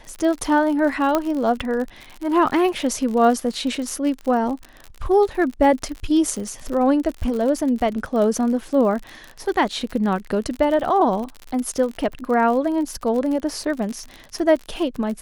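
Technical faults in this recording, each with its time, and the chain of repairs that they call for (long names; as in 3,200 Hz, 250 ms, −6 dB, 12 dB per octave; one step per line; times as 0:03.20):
surface crackle 58 per second −27 dBFS
0:01.15: click −6 dBFS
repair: click removal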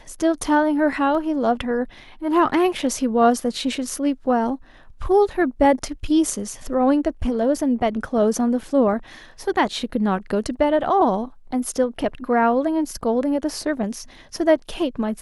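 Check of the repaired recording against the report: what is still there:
0:01.15: click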